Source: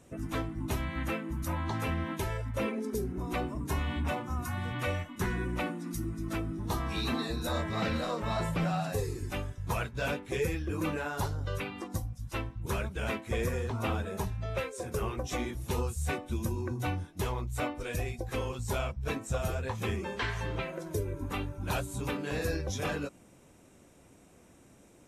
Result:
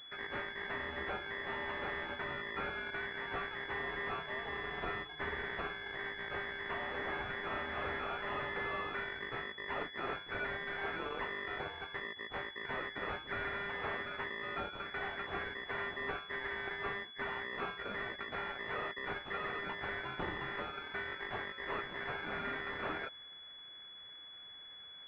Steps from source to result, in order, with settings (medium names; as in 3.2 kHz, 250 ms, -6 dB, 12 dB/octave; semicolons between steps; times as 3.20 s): ring modulator 1.9 kHz; saturation -32 dBFS, distortion -12 dB; class-D stage that switches slowly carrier 3.4 kHz; trim +4 dB